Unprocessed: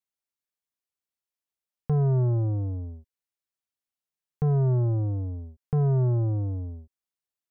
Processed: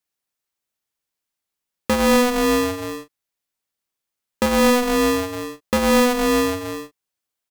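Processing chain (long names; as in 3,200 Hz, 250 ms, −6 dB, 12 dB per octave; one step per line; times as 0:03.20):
double-tracking delay 38 ms −6.5 dB
in parallel at 0 dB: downward compressor, threshold −27 dBFS, peak gain reduction 8 dB
on the sum: ring modulator with a square carrier 370 Hz
level +1.5 dB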